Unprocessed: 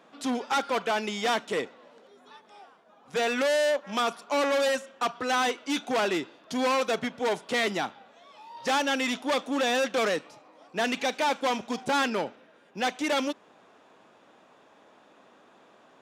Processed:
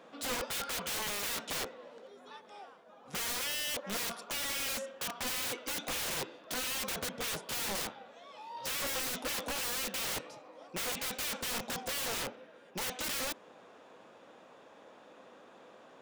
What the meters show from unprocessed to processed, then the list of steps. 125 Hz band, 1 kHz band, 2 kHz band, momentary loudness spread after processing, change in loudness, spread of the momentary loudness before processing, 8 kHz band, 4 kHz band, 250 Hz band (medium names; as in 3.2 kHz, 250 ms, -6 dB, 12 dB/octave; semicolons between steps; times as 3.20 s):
-2.5 dB, -13.5 dB, -8.5 dB, 17 LU, -7.5 dB, 8 LU, +3.0 dB, -4.0 dB, -14.5 dB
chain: integer overflow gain 31 dB; peaking EQ 510 Hz +7 dB 0.24 oct